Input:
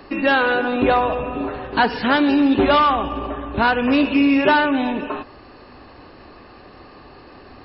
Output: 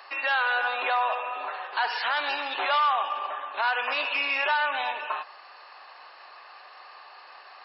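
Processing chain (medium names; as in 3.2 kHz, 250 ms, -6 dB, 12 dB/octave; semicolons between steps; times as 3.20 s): high-pass 760 Hz 24 dB/octave; peak limiter -16.5 dBFS, peak gain reduction 10 dB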